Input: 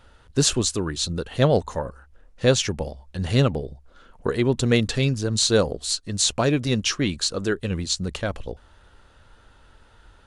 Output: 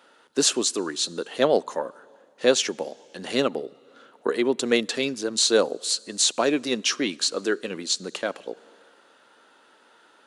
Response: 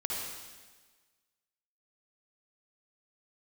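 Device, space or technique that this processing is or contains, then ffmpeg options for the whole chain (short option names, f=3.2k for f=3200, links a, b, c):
compressed reverb return: -filter_complex "[0:a]asplit=2[a][b];[1:a]atrim=start_sample=2205[c];[b][c]afir=irnorm=-1:irlink=0,acompressor=threshold=-28dB:ratio=6,volume=-17.5dB[d];[a][d]amix=inputs=2:normalize=0,highpass=f=260:w=0.5412,highpass=f=260:w=1.3066"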